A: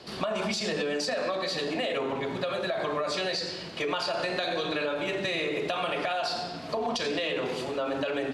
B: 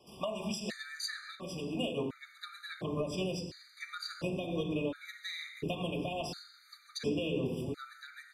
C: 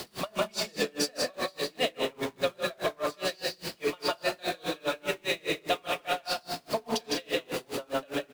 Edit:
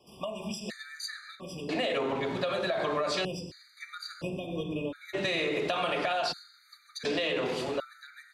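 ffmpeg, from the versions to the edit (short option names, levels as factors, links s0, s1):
-filter_complex "[0:a]asplit=3[s0][s1][s2];[1:a]asplit=4[s3][s4][s5][s6];[s3]atrim=end=1.692[s7];[s0]atrim=start=1.688:end=3.252[s8];[s4]atrim=start=3.248:end=5.15[s9];[s1]atrim=start=5.13:end=6.33[s10];[s5]atrim=start=6.31:end=7.052[s11];[s2]atrim=start=7.048:end=7.802[s12];[s6]atrim=start=7.798[s13];[s7][s8]acrossfade=d=0.004:c1=hsin:c2=hsin[s14];[s14][s9]acrossfade=d=0.004:c1=hsin:c2=hsin[s15];[s15][s10]acrossfade=d=0.02:c1=tri:c2=tri[s16];[s16][s11]acrossfade=d=0.02:c1=tri:c2=tri[s17];[s17][s12]acrossfade=d=0.004:c1=hsin:c2=hsin[s18];[s18][s13]acrossfade=d=0.004:c1=hsin:c2=hsin"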